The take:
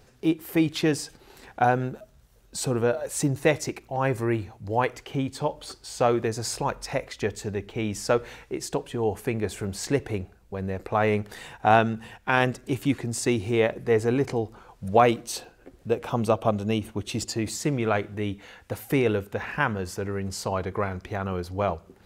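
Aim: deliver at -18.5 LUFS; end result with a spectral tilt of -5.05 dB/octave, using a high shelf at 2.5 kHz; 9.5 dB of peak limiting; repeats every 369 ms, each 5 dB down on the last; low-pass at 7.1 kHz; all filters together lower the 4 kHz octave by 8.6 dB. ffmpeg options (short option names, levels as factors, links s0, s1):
-af "lowpass=7100,highshelf=f=2500:g=-3,equalizer=f=4000:t=o:g=-8.5,alimiter=limit=0.188:level=0:latency=1,aecho=1:1:369|738|1107|1476|1845|2214|2583:0.562|0.315|0.176|0.0988|0.0553|0.031|0.0173,volume=2.82"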